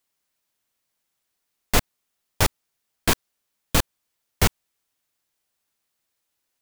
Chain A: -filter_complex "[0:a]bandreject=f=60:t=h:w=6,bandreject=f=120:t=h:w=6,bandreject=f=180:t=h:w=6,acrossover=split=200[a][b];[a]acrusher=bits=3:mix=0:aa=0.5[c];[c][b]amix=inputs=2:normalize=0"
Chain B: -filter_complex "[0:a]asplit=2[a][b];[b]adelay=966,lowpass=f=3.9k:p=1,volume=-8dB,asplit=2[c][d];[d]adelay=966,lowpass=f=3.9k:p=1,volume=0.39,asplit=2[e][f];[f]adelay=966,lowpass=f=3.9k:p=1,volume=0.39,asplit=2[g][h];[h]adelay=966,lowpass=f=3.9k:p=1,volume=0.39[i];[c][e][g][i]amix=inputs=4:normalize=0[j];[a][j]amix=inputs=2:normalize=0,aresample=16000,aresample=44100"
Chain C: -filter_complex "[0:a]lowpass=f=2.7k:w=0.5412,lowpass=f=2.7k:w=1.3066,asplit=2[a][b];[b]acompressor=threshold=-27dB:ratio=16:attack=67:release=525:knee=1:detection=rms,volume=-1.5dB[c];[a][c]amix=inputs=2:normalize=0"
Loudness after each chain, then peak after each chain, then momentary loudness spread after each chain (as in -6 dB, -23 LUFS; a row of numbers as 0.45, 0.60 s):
-25.0, -28.0, -25.0 LUFS; -4.0, -4.5, -3.5 dBFS; 3, 18, 3 LU